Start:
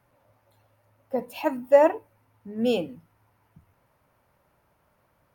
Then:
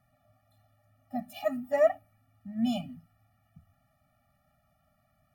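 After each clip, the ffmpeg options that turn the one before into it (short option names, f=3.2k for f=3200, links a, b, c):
-af "afftfilt=real='re*eq(mod(floor(b*sr/1024/280),2),0)':imag='im*eq(mod(floor(b*sr/1024/280),2),0)':win_size=1024:overlap=0.75,volume=-1dB"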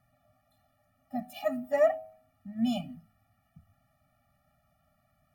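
-af "bandreject=f=106.2:t=h:w=4,bandreject=f=212.4:t=h:w=4,bandreject=f=318.6:t=h:w=4,bandreject=f=424.8:t=h:w=4,bandreject=f=531:t=h:w=4,bandreject=f=637.2:t=h:w=4,bandreject=f=743.4:t=h:w=4,bandreject=f=849.6:t=h:w=4,bandreject=f=955.8:t=h:w=4"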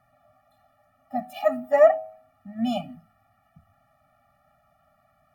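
-af "equalizer=f=980:t=o:w=2.3:g=11"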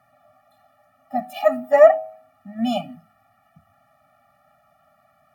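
-af "highpass=f=190:p=1,volume=5dB"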